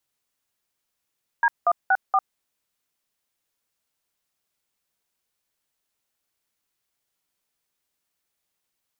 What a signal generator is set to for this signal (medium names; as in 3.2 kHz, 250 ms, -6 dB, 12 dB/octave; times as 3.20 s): DTMF "D164", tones 51 ms, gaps 185 ms, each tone -18 dBFS